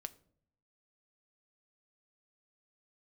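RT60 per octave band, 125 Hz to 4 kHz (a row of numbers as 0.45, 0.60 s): 0.95, 0.90, 0.70, 0.50, 0.40, 0.35 s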